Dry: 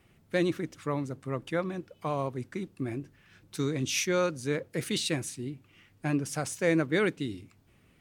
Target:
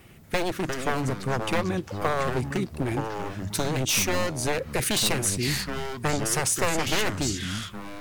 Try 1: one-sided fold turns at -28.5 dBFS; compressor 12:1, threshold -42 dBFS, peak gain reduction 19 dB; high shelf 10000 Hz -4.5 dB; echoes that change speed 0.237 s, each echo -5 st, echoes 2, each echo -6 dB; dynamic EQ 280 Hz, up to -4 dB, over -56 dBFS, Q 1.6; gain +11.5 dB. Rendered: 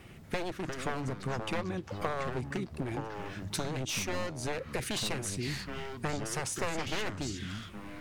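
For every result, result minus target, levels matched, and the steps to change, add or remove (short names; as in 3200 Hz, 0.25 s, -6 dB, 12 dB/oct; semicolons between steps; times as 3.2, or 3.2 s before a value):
compressor: peak gain reduction +8.5 dB; 8000 Hz band -2.5 dB
change: compressor 12:1, threshold -32.5 dBFS, peak gain reduction 10 dB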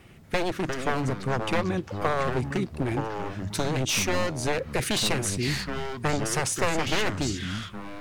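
8000 Hz band -3.0 dB
change: high shelf 10000 Hz +7.5 dB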